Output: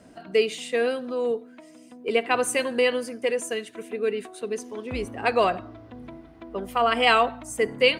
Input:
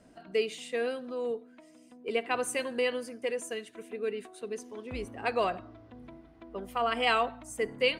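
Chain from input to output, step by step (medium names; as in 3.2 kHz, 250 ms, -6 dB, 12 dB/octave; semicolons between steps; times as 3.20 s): high-pass 48 Hz; trim +7.5 dB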